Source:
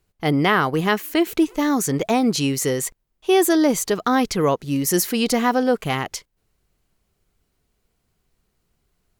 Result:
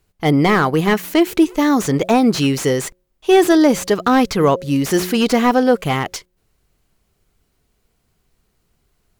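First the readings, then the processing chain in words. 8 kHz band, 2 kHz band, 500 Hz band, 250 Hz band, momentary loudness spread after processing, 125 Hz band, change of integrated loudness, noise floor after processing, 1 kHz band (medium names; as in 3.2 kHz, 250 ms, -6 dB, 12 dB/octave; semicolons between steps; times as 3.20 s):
-2.0 dB, +3.0 dB, +5.0 dB, +5.0 dB, 7 LU, +5.0 dB, +4.5 dB, -67 dBFS, +4.0 dB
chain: de-hum 181.2 Hz, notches 3; slew-rate limiter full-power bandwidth 220 Hz; trim +5 dB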